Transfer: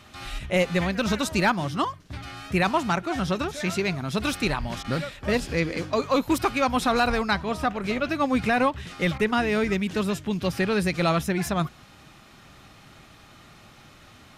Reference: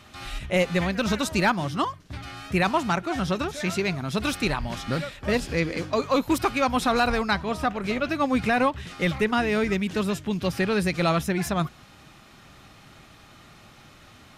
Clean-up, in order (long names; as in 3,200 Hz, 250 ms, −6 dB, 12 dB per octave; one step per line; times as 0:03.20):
repair the gap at 0:04.83/0:09.18, 13 ms